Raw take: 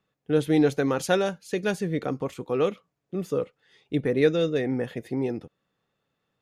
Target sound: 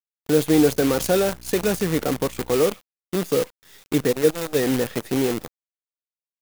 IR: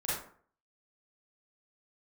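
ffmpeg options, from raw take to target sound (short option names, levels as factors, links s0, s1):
-filter_complex "[0:a]lowshelf=f=110:g=-9.5,acrossover=split=660[s0][s1];[s1]volume=56.2,asoftclip=hard,volume=0.0178[s2];[s0][s2]amix=inputs=2:normalize=0,asplit=3[s3][s4][s5];[s3]afade=t=out:st=4.11:d=0.02[s6];[s4]agate=range=0.251:threshold=0.1:ratio=16:detection=peak,afade=t=in:st=4.11:d=0.02,afade=t=out:st=4.54:d=0.02[s7];[s5]afade=t=in:st=4.54:d=0.02[s8];[s6][s7][s8]amix=inputs=3:normalize=0,asplit=2[s9][s10];[s10]acompressor=threshold=0.0141:ratio=8,volume=1.33[s11];[s9][s11]amix=inputs=2:normalize=0,asettb=1/sr,asplit=3[s12][s13][s14];[s12]atrim=end=0.484[s15];[s13]atrim=start=0.48:end=2.58,asetpts=PTS-STARTPTS,afade=t=in:d=0.004:c=qsin,afade=t=out:st=2.096:d=0.004:c=qsin,aeval=exprs='val(0)+0.00631*(sin(2*PI*60*n/s)+sin(2*PI*2*60*n/s)/2+sin(2*PI*3*60*n/s)/3+sin(2*PI*4*60*n/s)/4+sin(2*PI*5*60*n/s)/5)':c=same[s16];[s14]atrim=start=2.576[s17];[s15][s16]acrossfade=d=0.004:c1=hsin:c2=qsin[s18];[s18][s17]acrossfade=d=0.004:c1=qsin:c2=hsin,acrusher=bits=6:dc=4:mix=0:aa=0.000001,highshelf=f=9000:g=8.5,volume=1.58"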